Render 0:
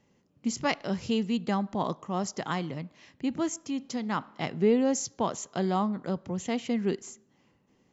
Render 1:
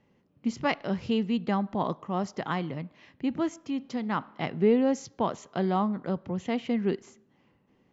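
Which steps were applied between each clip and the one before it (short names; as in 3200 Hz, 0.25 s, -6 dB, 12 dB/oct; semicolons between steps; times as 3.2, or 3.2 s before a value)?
LPF 3400 Hz 12 dB/oct; gain +1 dB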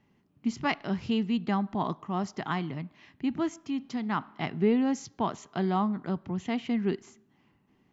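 bell 520 Hz -12 dB 0.33 oct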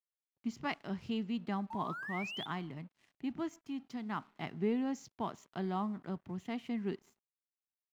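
painted sound rise, 1.7–2.46, 860–3600 Hz -34 dBFS; crossover distortion -55.5 dBFS; gain -8.5 dB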